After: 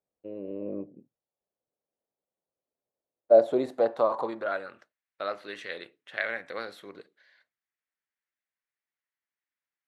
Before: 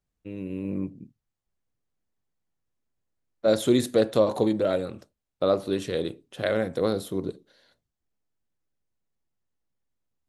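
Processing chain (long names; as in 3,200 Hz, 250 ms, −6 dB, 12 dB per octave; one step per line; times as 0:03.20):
wrong playback speed 24 fps film run at 25 fps
band-pass filter sweep 560 Hz → 1,900 Hz, 0:03.25–0:04.97
level +5.5 dB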